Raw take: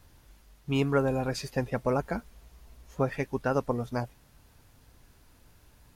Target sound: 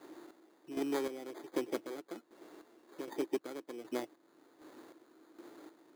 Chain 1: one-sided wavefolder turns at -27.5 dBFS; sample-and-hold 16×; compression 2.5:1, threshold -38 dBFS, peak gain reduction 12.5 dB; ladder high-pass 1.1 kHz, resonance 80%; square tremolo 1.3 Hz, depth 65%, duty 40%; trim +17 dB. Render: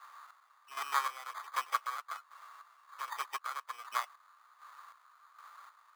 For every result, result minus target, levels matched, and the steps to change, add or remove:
1 kHz band +11.0 dB; compression: peak gain reduction -5.5 dB
change: ladder high-pass 310 Hz, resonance 80%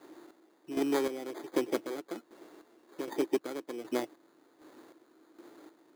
compression: peak gain reduction -5.5 dB
change: compression 2.5:1, threshold -47 dBFS, peak gain reduction 17.5 dB

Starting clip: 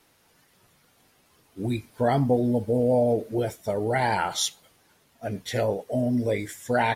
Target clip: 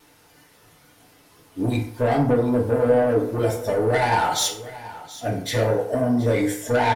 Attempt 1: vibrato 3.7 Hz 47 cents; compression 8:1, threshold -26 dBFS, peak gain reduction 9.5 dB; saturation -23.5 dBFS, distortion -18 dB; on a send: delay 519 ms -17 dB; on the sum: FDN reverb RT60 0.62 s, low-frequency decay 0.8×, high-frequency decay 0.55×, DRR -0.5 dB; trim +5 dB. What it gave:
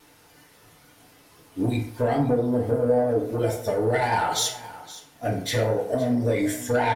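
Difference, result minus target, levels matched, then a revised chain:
echo 208 ms early; compression: peak gain reduction +5.5 dB
vibrato 3.7 Hz 47 cents; compression 8:1, threshold -19.5 dBFS, peak gain reduction 4 dB; saturation -23.5 dBFS, distortion -12 dB; on a send: delay 727 ms -17 dB; on the sum: FDN reverb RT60 0.62 s, low-frequency decay 0.8×, high-frequency decay 0.55×, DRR -0.5 dB; trim +5 dB

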